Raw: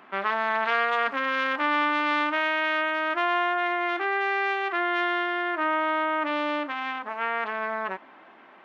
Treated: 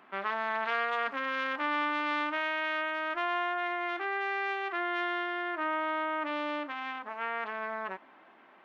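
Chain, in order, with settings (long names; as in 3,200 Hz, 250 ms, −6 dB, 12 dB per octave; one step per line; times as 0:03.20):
0:02.37–0:04.49: low shelf with overshoot 120 Hz +12 dB, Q 1.5
level −6.5 dB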